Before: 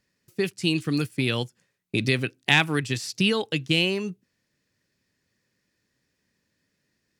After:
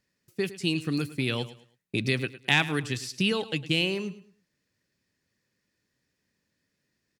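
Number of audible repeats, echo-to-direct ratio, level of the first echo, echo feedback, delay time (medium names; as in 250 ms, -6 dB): 2, -15.5 dB, -16.0 dB, 29%, 107 ms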